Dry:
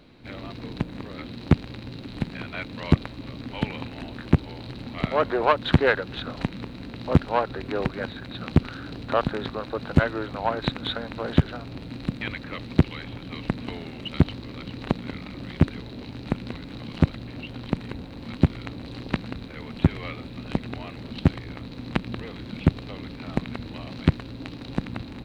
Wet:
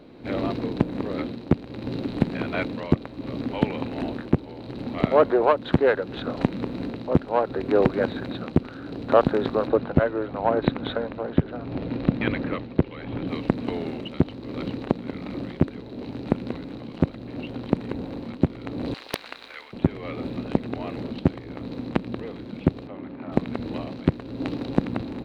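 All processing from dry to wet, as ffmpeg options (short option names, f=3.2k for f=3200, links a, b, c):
-filter_complex "[0:a]asettb=1/sr,asplit=3[a][b][c];[a]atrim=end=9.674[d];[b]atrim=start=9.67:end=13.28,asetpts=PTS-STARTPTS,afade=t=in:d=0.004:c=qsin,afade=t=out:st=3.606:d=0.004:c=qsin,lowpass=3.5k,aphaser=in_gain=1:out_gain=1:delay=2.2:decay=0.21:speed=1.1:type=triangular[e];[c]atrim=start=13.276[f];[d][e]acrossfade=d=0.004:c1=hsin:c2=qsin[g];[g][f]acrossfade=d=0.004:c1=qsin:c2=hsin,asettb=1/sr,asplit=3[h][i][j];[h]atrim=end=18.944[k];[i]atrim=start=18.94:end=19.73,asetpts=PTS-STARTPTS,afade=t=in:d=0.004:c=qsin,afade=t=out:st=0.786:d=0.004:c=qsin,highpass=1.4k,aeval=exprs='val(0)+0.000224*(sin(2*PI*50*n/s)+sin(2*PI*2*50*n/s)/2+sin(2*PI*3*50*n/s)/3+sin(2*PI*4*50*n/s)/4+sin(2*PI*5*50*n/s)/5)':c=same,aeval=exprs='(mod(4.73*val(0)+1,2)-1)/4.73':c=same[l];[j]atrim=start=19.726[m];[k][l]acrossfade=d=0.004:c1=hsin:c2=qsin[n];[n][m]acrossfade=d=0.004:c1=qsin:c2=hsin,asettb=1/sr,asplit=3[o][p][q];[o]atrim=end=22.874[r];[p]atrim=start=22.87:end=23.32,asetpts=PTS-STARTPTS,afade=t=in:d=0.004:c=qsin,afade=t=out:st=0.446:d=0.004:c=qsin,lowpass=2k,lowshelf=f=120:g=-11.5,bandreject=f=460:w=5.5[s];[q]atrim=start=23.316[t];[r][s]acrossfade=d=0.004:c1=hsin:c2=qsin[u];[u][t]acrossfade=d=0.004:c1=qsin:c2=hsin,equalizer=f=420:w=0.44:g=12,dynaudnorm=f=120:g=5:m=8dB,volume=-3.5dB"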